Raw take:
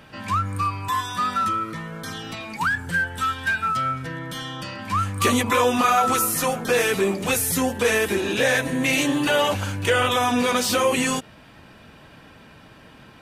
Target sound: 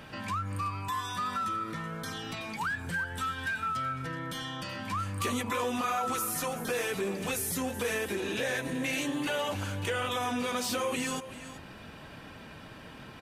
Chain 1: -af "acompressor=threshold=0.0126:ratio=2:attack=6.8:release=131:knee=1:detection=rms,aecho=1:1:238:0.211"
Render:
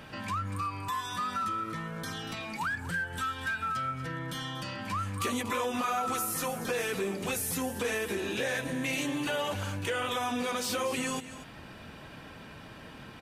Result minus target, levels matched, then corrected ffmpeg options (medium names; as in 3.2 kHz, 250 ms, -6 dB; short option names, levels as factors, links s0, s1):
echo 140 ms early
-af "acompressor=threshold=0.0126:ratio=2:attack=6.8:release=131:knee=1:detection=rms,aecho=1:1:378:0.211"